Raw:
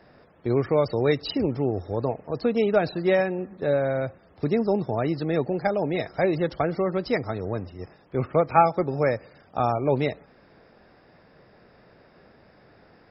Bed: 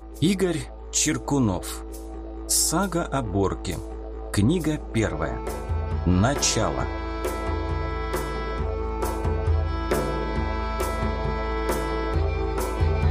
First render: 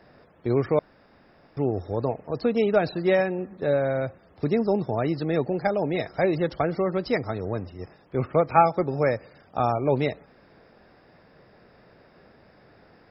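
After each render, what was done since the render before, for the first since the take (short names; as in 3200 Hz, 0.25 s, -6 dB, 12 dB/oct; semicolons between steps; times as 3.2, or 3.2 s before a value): 0.79–1.57 room tone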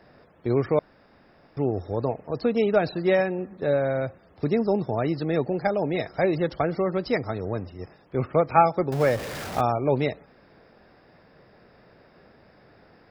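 8.92–9.61 zero-crossing step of -29 dBFS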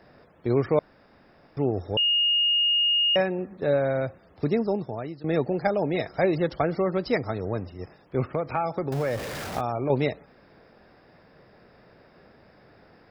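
1.97–3.16 bleep 2850 Hz -19 dBFS; 4.45–5.24 fade out, to -17 dB; 8.24–9.9 compressor 4:1, threshold -23 dBFS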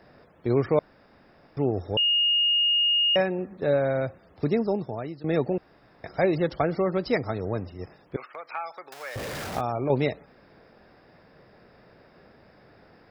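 5.58–6.04 room tone; 8.16–9.16 HPF 1200 Hz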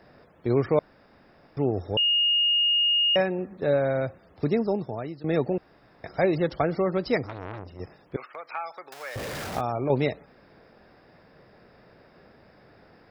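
7.26–7.8 core saturation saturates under 1800 Hz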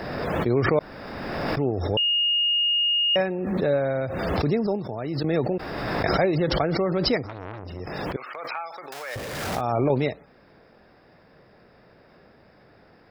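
backwards sustainer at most 26 dB/s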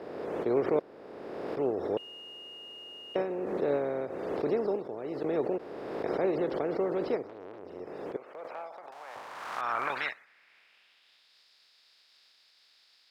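spectral contrast lowered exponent 0.42; band-pass sweep 420 Hz -> 4200 Hz, 8.1–11.39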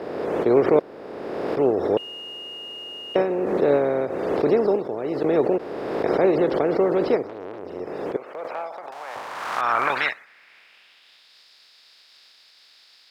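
gain +10 dB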